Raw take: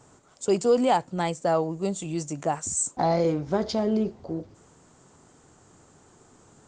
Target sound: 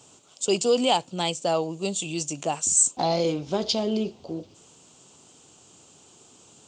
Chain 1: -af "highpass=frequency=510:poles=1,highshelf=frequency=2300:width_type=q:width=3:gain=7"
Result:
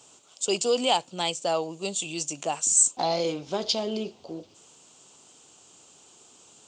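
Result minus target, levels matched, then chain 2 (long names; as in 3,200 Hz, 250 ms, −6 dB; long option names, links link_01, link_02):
125 Hz band −6.0 dB
-af "highpass=frequency=160:poles=1,highshelf=frequency=2300:width_type=q:width=3:gain=7"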